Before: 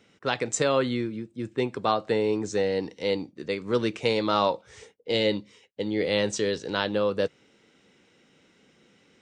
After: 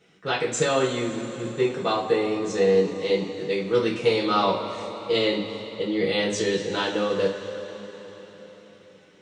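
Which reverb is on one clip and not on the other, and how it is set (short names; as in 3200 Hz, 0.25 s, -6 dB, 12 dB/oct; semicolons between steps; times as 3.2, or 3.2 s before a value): two-slope reverb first 0.3 s, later 4.5 s, from -18 dB, DRR -7 dB; gain -5 dB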